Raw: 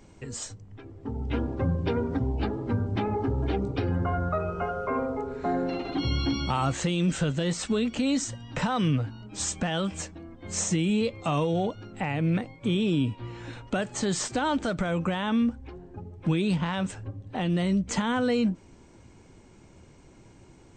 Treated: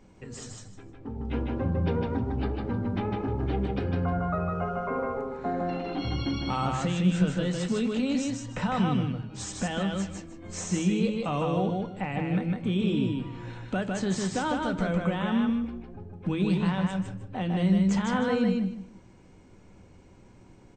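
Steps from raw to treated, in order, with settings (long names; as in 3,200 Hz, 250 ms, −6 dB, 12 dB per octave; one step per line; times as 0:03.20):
high-shelf EQ 4,900 Hz −8 dB
repeating echo 154 ms, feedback 21%, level −3 dB
convolution reverb RT60 0.45 s, pre-delay 4 ms, DRR 10 dB
level −3 dB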